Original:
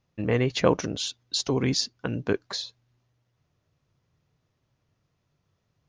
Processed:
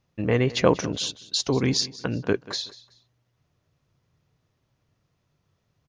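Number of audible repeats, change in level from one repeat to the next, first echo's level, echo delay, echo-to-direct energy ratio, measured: 2, -11.0 dB, -18.5 dB, 187 ms, -18.0 dB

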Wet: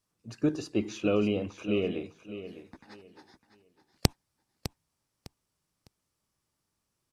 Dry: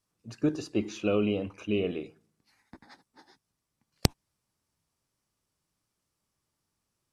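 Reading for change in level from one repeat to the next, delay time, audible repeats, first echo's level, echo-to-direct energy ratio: -12.0 dB, 605 ms, 2, -12.5 dB, -12.0 dB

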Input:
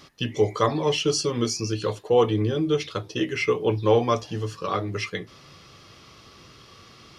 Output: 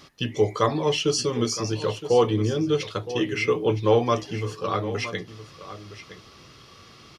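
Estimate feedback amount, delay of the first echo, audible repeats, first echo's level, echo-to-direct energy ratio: no regular repeats, 966 ms, 1, -13.5 dB, -13.5 dB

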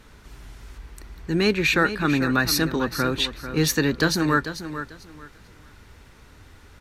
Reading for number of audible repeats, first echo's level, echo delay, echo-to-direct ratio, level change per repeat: 2, -11.0 dB, 443 ms, -11.0 dB, -13.0 dB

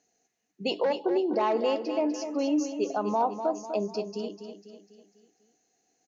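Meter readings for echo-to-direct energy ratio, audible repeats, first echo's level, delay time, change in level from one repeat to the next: -8.0 dB, 5, -9.0 dB, 248 ms, -6.5 dB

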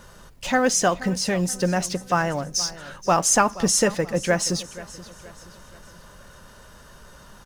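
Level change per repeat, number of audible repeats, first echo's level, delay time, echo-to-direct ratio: -7.5 dB, 3, -17.5 dB, 476 ms, -16.5 dB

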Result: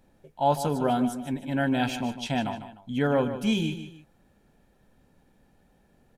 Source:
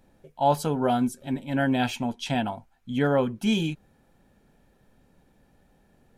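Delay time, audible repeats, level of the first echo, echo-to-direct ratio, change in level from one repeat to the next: 151 ms, 2, -11.0 dB, -10.5 dB, -9.0 dB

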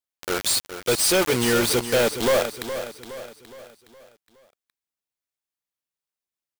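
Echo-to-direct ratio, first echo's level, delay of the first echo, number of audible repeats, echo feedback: -9.5 dB, -10.5 dB, 416 ms, 4, 46%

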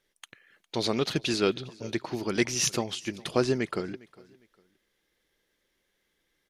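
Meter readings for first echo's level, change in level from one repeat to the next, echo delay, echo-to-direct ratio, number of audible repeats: -23.0 dB, -10.5 dB, 406 ms, -22.5 dB, 2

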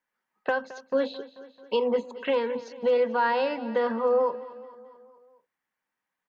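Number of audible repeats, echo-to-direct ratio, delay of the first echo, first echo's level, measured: 4, -15.0 dB, 219 ms, -17.0 dB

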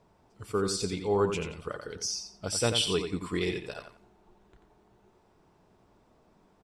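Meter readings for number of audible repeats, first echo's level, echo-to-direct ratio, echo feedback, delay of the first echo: 3, -7.5 dB, -7.5 dB, 23%, 88 ms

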